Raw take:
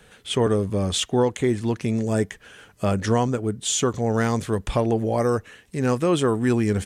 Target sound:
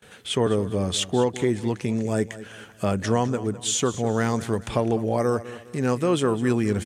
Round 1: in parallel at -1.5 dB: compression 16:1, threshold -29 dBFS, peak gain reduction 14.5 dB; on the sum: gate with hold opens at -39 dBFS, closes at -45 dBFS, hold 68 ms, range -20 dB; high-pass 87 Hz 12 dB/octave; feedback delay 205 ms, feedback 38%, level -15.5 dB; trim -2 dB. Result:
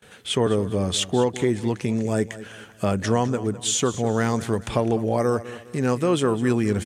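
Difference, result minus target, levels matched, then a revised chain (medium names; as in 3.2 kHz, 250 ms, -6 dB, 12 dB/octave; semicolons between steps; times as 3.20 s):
compression: peak gain reduction -8.5 dB
in parallel at -1.5 dB: compression 16:1, threshold -38 dBFS, peak gain reduction 23 dB; on the sum: gate with hold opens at -39 dBFS, closes at -45 dBFS, hold 68 ms, range -20 dB; high-pass 87 Hz 12 dB/octave; feedback delay 205 ms, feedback 38%, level -15.5 dB; trim -2 dB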